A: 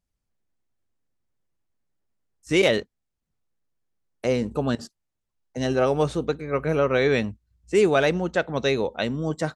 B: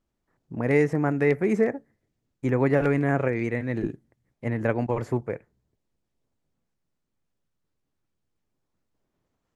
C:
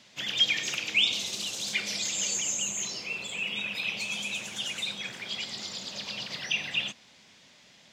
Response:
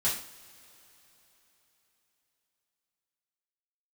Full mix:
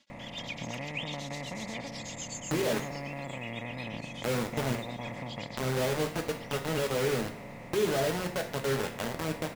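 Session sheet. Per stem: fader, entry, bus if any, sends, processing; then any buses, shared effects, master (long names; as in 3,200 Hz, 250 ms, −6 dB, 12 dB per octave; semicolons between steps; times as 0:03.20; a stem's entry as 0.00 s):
−3.0 dB, 0.00 s, bus A, send −17.5 dB, Bessel low-pass filter 780 Hz, order 6; bit reduction 4 bits
−12.0 dB, 0.10 s, no bus, no send, compressor on every frequency bin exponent 0.2; downward compressor 3 to 1, threshold −18 dBFS, peak gain reduction 6.5 dB; phaser with its sweep stopped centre 1,500 Hz, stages 6
−12.0 dB, 0.00 s, bus A, no send, comb filter 3.6 ms, depth 89%; tremolo along a rectified sine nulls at 8.1 Hz
bus A: 0.0 dB, downward compressor 4 to 1, threshold −33 dBFS, peak gain reduction 13.5 dB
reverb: on, pre-delay 3 ms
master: no processing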